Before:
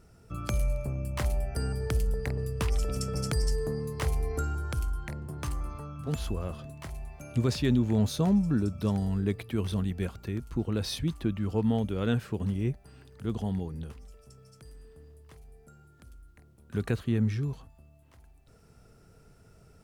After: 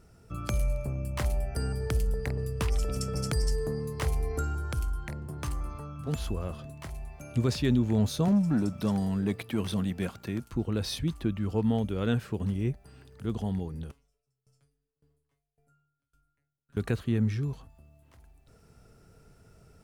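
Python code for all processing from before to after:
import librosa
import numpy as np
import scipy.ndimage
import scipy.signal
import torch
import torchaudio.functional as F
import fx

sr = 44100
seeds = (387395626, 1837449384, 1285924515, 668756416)

y = fx.chain(x, sr, fx.highpass(hz=140.0, slope=12),
    fx.peak_eq(hz=400.0, db=-4.0, octaves=0.42),
    fx.leveller(passes=1), at=(8.28, 10.53))
y = fx.chain(y, sr, fx.comb_fb(f0_hz=140.0, decay_s=0.24, harmonics='all', damping=0.0, mix_pct=100),
    fx.tremolo_decay(direction='decaying', hz=1.8, depth_db=27), at=(13.91, 16.77))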